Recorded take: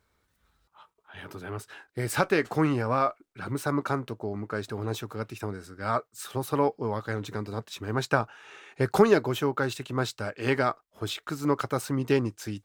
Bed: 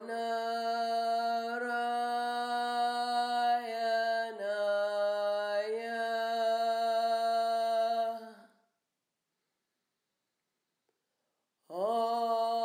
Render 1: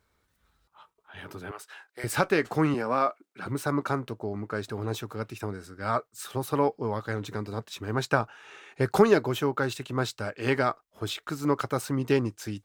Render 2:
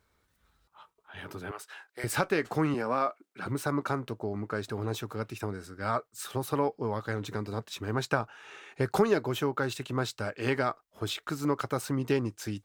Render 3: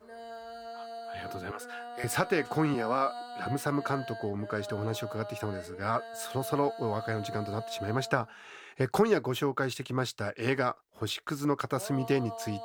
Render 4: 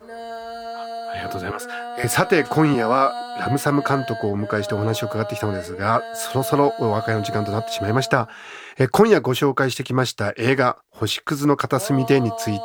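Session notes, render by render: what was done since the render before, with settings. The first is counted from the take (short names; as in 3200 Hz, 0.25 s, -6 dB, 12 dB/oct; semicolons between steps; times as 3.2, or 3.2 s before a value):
1.51–2.04 HPF 660 Hz; 2.74–3.46 HPF 170 Hz 24 dB/oct
compressor 1.5:1, threshold -29 dBFS, peak gain reduction 6 dB
add bed -10 dB
gain +11 dB; limiter -2 dBFS, peak gain reduction 2 dB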